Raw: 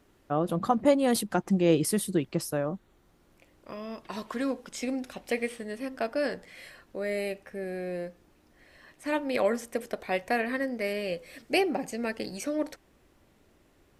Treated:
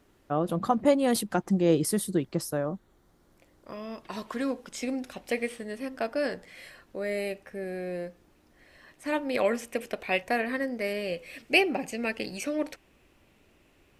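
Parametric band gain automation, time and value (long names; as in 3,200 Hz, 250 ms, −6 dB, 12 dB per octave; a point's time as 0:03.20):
parametric band 2,600 Hz 0.51 octaves
0 dB
from 0:01.46 −6 dB
from 0:03.74 +0.5 dB
from 0:09.41 +10 dB
from 0:10.23 +0.5 dB
from 0:11.14 +9 dB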